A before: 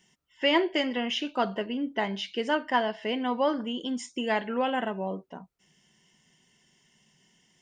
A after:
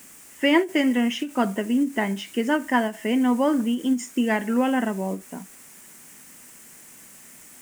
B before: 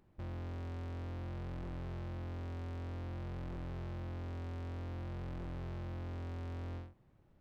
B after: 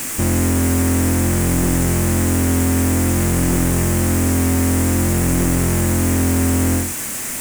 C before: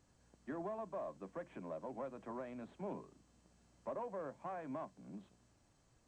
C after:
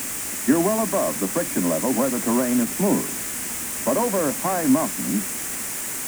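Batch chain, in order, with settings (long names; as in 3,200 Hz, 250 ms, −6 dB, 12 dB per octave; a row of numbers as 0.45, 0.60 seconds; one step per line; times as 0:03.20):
background noise white −51 dBFS
octave-band graphic EQ 250/2,000/4,000/8,000 Hz +11/+6/−9/+10 dB
every ending faded ahead of time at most 220 dB per second
normalise the peak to −6 dBFS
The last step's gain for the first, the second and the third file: +0.5, +22.0, +18.5 decibels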